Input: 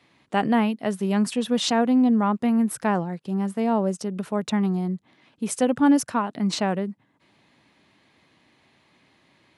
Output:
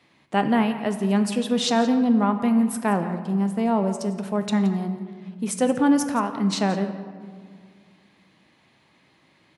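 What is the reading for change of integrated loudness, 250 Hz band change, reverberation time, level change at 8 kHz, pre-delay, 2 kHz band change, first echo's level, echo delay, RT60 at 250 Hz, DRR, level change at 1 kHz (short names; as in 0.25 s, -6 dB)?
+0.5 dB, +0.5 dB, 2.0 s, +0.5 dB, 4 ms, +0.5 dB, -15.0 dB, 0.172 s, 2.6 s, 7.0 dB, +0.5 dB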